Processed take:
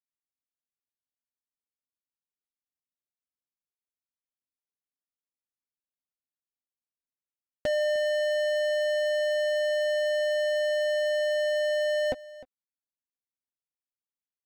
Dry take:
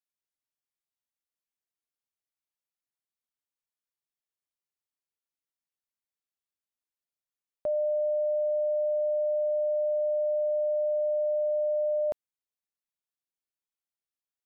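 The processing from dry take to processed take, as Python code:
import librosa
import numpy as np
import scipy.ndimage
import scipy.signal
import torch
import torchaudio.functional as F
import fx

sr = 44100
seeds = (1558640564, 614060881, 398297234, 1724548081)

y = fx.wiener(x, sr, points=41)
y = fx.dynamic_eq(y, sr, hz=400.0, q=0.89, threshold_db=-46.0, ratio=4.0, max_db=-6)
y = fx.small_body(y, sr, hz=(260.0, 520.0, 750.0), ring_ms=60, db=11)
y = fx.leveller(y, sr, passes=5)
y = fx.low_shelf(y, sr, hz=260.0, db=7.5)
y = y + 10.0 ** (-19.0 / 20.0) * np.pad(y, (int(305 * sr / 1000.0), 0))[:len(y)]
y = F.gain(torch.from_numpy(y), -3.0).numpy()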